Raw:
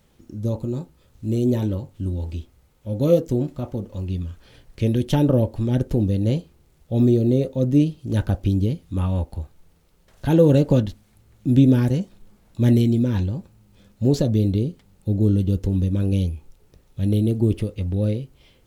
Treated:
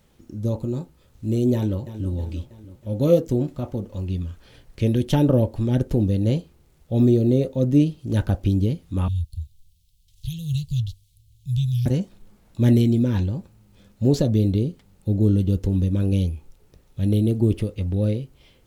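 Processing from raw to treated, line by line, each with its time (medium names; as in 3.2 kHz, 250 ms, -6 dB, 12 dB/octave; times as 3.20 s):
1.54–2.11 s: echo throw 320 ms, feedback 55%, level -12 dB
9.08–11.86 s: elliptic band-stop 120–3300 Hz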